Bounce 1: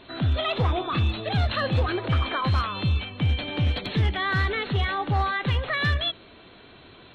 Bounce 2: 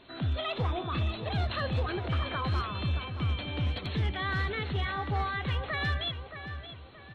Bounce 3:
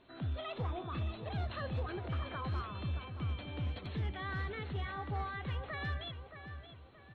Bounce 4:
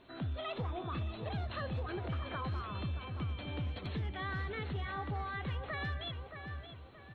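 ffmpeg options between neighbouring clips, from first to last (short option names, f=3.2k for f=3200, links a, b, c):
-filter_complex "[0:a]asplit=2[a][b];[b]adelay=624,lowpass=f=2.7k:p=1,volume=-9dB,asplit=2[c][d];[d]adelay=624,lowpass=f=2.7k:p=1,volume=0.38,asplit=2[e][f];[f]adelay=624,lowpass=f=2.7k:p=1,volume=0.38,asplit=2[g][h];[h]adelay=624,lowpass=f=2.7k:p=1,volume=0.38[i];[a][c][e][g][i]amix=inputs=5:normalize=0,volume=-7dB"
-af "highshelf=f=3.1k:g=-9,volume=-7dB"
-af "acompressor=threshold=-38dB:ratio=6,volume=3.5dB"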